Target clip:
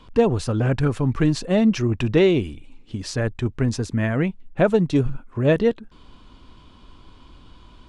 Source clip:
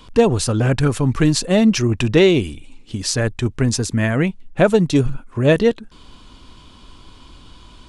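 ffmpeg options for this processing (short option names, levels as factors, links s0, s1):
-af "lowpass=f=2400:p=1,volume=0.668"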